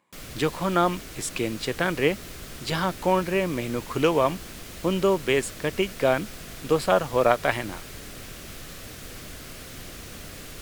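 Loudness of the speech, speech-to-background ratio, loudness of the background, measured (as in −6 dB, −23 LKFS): −25.0 LKFS, 14.5 dB, −39.5 LKFS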